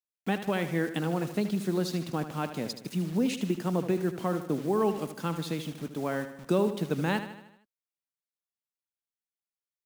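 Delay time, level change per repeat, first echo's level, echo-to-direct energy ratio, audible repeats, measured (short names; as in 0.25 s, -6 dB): 77 ms, -5.5 dB, -11.0 dB, -9.5 dB, 5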